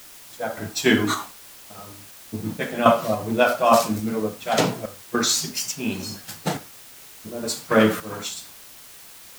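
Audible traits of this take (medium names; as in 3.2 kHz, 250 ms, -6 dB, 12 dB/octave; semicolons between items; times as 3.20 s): random-step tremolo, depth 85%; a quantiser's noise floor 8-bit, dither triangular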